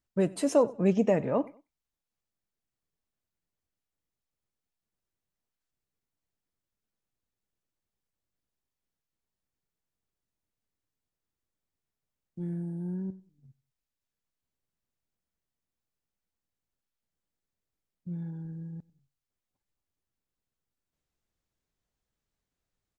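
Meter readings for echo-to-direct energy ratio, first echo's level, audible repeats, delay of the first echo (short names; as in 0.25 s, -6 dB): -22.0 dB, -22.5 dB, 2, 95 ms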